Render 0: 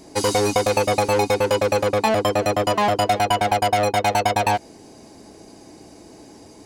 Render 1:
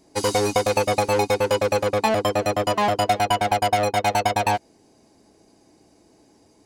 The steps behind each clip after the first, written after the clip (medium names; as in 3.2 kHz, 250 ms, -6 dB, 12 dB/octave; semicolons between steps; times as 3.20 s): upward expansion 1.5:1, over -39 dBFS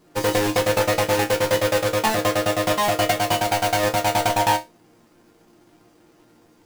square wave that keeps the level; chord resonator A#2 sus4, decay 0.21 s; trim +8.5 dB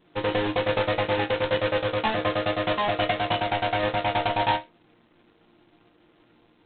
trim -4.5 dB; G.726 16 kbps 8 kHz